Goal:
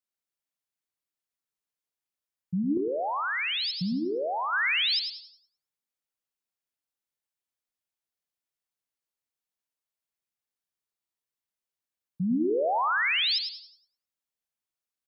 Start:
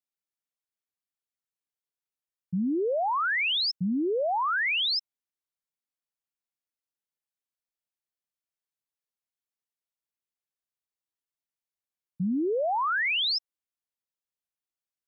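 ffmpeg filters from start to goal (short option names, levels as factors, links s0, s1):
-filter_complex "[0:a]asplit=2[s0][s1];[s1]asplit=4[s2][s3][s4][s5];[s2]adelay=90,afreqshift=56,volume=0.266[s6];[s3]adelay=180,afreqshift=112,volume=0.112[s7];[s4]adelay=270,afreqshift=168,volume=0.0468[s8];[s5]adelay=360,afreqshift=224,volume=0.0197[s9];[s6][s7][s8][s9]amix=inputs=4:normalize=0[s10];[s0][s10]amix=inputs=2:normalize=0,asettb=1/sr,asplit=3[s11][s12][s13];[s11]atrim=end=2.774[s14];[s12]atrim=start=2.77:end=4.53,asetpts=PTS-STARTPTS,afade=t=in:d=0.004:c=qsin,afade=t=out:st=1.756:d=0.004:c=qsin,acrossover=split=130[s15][s16];[s16]acompressor=threshold=0.0398:ratio=6[s17];[s15][s17]amix=inputs=2:normalize=0[s18];[s13]atrim=start=4.526[s19];[s14][s18]acrossfade=d=0.004:c1=hsin:c2=qsin[s20];[s20][s19]acrossfade=d=0.004:c1=qsin:c2=hsin,asplit=2[s21][s22];[s22]aecho=0:1:106|212|318:0.398|0.0756|0.0144[s23];[s21][s23]amix=inputs=2:normalize=0"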